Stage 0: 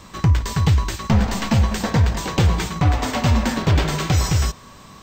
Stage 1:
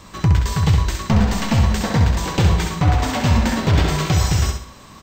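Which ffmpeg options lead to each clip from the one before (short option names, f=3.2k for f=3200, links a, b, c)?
-af "aecho=1:1:66|132|198|264:0.531|0.196|0.0727|0.0269"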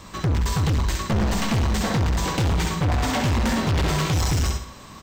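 -af "asoftclip=type=hard:threshold=-18.5dB"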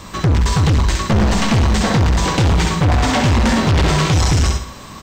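-filter_complex "[0:a]acrossover=split=9500[a][b];[b]acompressor=threshold=-56dB:ratio=4:attack=1:release=60[c];[a][c]amix=inputs=2:normalize=0,volume=7.5dB"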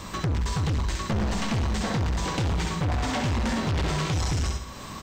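-af "acompressor=threshold=-29dB:ratio=2,volume=-3dB"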